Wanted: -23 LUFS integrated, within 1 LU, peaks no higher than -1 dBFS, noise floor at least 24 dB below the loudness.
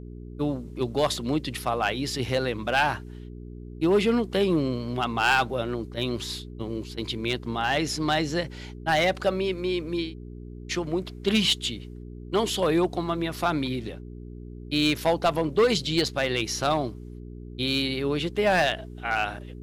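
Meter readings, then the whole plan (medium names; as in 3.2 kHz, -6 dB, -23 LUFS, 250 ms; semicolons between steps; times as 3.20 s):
clipped samples 0.6%; clipping level -15.0 dBFS; hum 60 Hz; highest harmonic 420 Hz; hum level -38 dBFS; loudness -26.0 LUFS; peak level -15.0 dBFS; loudness target -23.0 LUFS
-> clip repair -15 dBFS; de-hum 60 Hz, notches 7; trim +3 dB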